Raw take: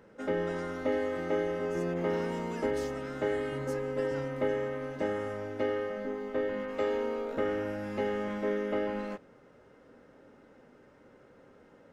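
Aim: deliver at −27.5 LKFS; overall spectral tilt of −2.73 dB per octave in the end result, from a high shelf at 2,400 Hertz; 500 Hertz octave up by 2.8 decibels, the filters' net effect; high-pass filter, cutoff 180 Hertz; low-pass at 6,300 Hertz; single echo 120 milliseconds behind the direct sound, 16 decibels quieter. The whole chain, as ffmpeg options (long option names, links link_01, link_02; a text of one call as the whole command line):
ffmpeg -i in.wav -af "highpass=180,lowpass=6300,equalizer=frequency=500:width_type=o:gain=3.5,highshelf=frequency=2400:gain=-3.5,aecho=1:1:120:0.158,volume=4dB" out.wav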